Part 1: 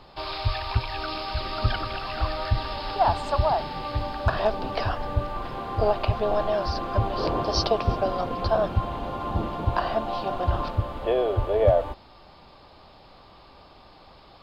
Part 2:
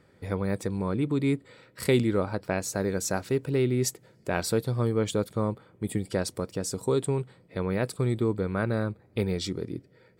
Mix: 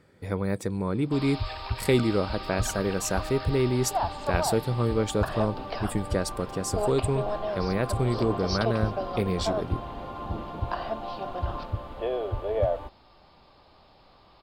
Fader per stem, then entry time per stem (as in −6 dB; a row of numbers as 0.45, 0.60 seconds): −6.0, +0.5 decibels; 0.95, 0.00 seconds